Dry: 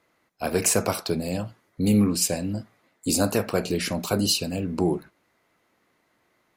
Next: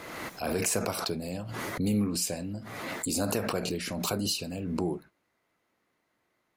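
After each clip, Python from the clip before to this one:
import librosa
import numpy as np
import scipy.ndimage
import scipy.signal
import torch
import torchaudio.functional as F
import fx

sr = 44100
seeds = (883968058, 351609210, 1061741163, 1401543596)

y = fx.pre_swell(x, sr, db_per_s=31.0)
y = y * 10.0 ** (-8.0 / 20.0)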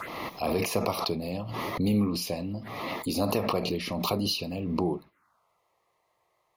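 y = fx.peak_eq(x, sr, hz=1200.0, db=14.0, octaves=1.1)
y = fx.env_phaser(y, sr, low_hz=240.0, high_hz=1500.0, full_db=-33.0)
y = y * 10.0 ** (2.0 / 20.0)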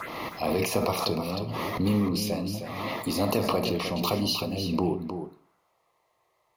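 y = x + 10.0 ** (-8.0 / 20.0) * np.pad(x, (int(310 * sr / 1000.0), 0))[:len(x)]
y = fx.rev_plate(y, sr, seeds[0], rt60_s=0.58, hf_ratio=0.8, predelay_ms=0, drr_db=12.5)
y = y * 10.0 ** (1.0 / 20.0)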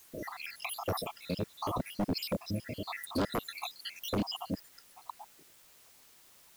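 y = fx.spec_dropout(x, sr, seeds[1], share_pct=79)
y = fx.quant_dither(y, sr, seeds[2], bits=10, dither='triangular')
y = 10.0 ** (-24.0 / 20.0) * (np.abs((y / 10.0 ** (-24.0 / 20.0) + 3.0) % 4.0 - 2.0) - 1.0)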